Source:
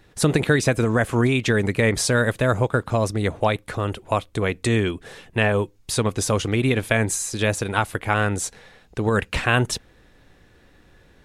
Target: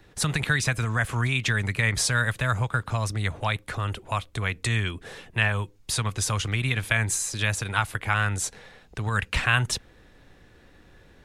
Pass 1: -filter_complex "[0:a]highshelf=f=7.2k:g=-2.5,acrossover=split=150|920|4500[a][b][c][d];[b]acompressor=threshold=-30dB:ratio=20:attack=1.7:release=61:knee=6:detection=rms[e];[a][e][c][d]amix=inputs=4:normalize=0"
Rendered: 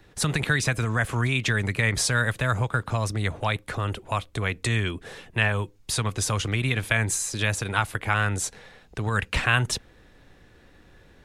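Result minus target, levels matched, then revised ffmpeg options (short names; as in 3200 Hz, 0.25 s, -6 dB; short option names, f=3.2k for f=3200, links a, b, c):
compressor: peak gain reduction -6.5 dB
-filter_complex "[0:a]highshelf=f=7.2k:g=-2.5,acrossover=split=150|920|4500[a][b][c][d];[b]acompressor=threshold=-37dB:ratio=20:attack=1.7:release=61:knee=6:detection=rms[e];[a][e][c][d]amix=inputs=4:normalize=0"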